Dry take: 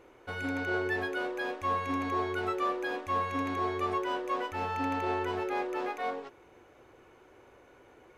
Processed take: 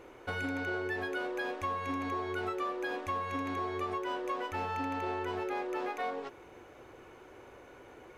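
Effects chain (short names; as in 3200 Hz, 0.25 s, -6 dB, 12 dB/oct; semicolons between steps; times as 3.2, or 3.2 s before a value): compressor, threshold -37 dBFS, peak gain reduction 10.5 dB; gain +4.5 dB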